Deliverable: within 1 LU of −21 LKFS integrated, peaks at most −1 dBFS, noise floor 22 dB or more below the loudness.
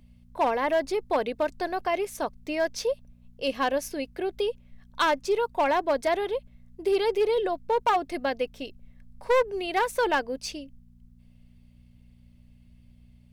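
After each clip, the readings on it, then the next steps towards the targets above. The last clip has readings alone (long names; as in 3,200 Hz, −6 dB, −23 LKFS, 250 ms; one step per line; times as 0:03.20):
share of clipped samples 0.9%; peaks flattened at −17.5 dBFS; mains hum 60 Hz; hum harmonics up to 240 Hz; level of the hum −54 dBFS; integrated loudness −27.5 LKFS; sample peak −17.5 dBFS; target loudness −21.0 LKFS
→ clipped peaks rebuilt −17.5 dBFS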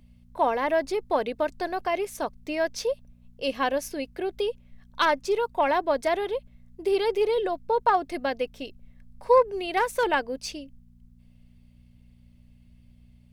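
share of clipped samples 0.0%; mains hum 60 Hz; hum harmonics up to 240 Hz; level of the hum −53 dBFS
→ hum removal 60 Hz, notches 4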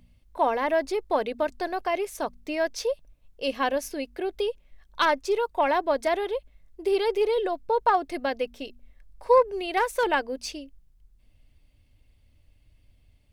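mains hum none found; integrated loudness −26.5 LKFS; sample peak −8.5 dBFS; target loudness −21.0 LKFS
→ level +5.5 dB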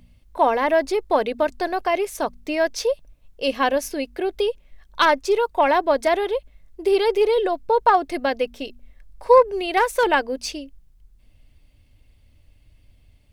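integrated loudness −21.0 LKFS; sample peak −3.0 dBFS; background noise floor −56 dBFS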